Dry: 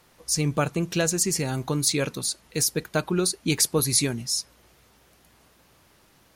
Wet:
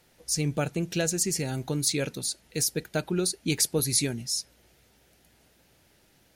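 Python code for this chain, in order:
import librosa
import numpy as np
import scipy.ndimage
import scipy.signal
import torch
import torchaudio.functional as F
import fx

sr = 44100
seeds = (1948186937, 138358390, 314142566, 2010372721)

y = fx.peak_eq(x, sr, hz=1100.0, db=-12.0, octaves=0.39)
y = y * librosa.db_to_amplitude(-3.0)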